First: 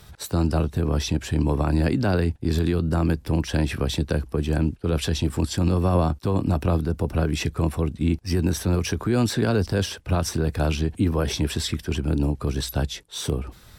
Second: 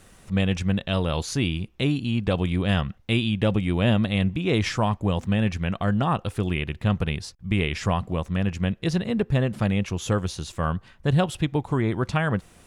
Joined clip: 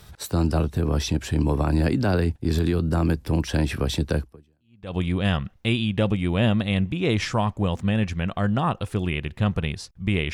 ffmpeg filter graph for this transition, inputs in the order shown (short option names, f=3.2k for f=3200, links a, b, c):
-filter_complex "[0:a]apad=whole_dur=10.33,atrim=end=10.33,atrim=end=4.97,asetpts=PTS-STARTPTS[a];[1:a]atrim=start=1.63:end=7.77,asetpts=PTS-STARTPTS[b];[a][b]acrossfade=d=0.78:c1=exp:c2=exp"